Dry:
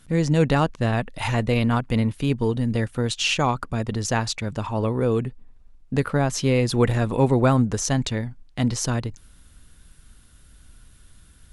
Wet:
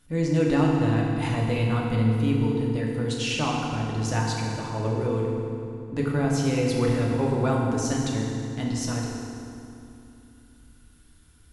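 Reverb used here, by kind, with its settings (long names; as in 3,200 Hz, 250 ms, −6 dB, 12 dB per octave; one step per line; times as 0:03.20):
feedback delay network reverb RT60 2.7 s, low-frequency decay 1.35×, high-frequency decay 0.75×, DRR −2.5 dB
level −8.5 dB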